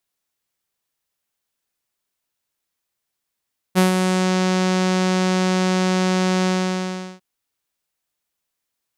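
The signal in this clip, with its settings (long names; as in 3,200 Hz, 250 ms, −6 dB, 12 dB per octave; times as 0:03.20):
subtractive voice saw F#3 12 dB per octave, low-pass 6,500 Hz, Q 1.4, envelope 1 octave, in 0.57 s, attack 32 ms, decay 0.13 s, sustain −5.5 dB, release 0.74 s, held 2.71 s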